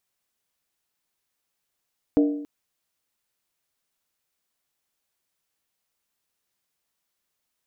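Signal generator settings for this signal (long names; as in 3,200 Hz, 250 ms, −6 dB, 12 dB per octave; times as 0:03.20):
struck skin length 0.28 s, lowest mode 292 Hz, decay 0.77 s, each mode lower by 7.5 dB, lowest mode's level −13.5 dB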